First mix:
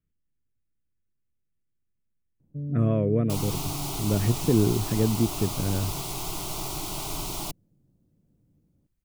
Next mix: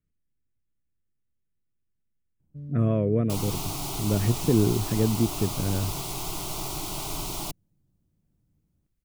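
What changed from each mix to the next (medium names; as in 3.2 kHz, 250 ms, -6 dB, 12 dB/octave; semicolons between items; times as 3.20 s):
first sound: add graphic EQ 125/250/500 Hz -4/-7/-9 dB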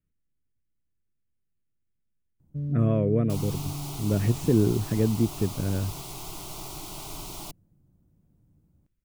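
first sound +8.0 dB; second sound -6.0 dB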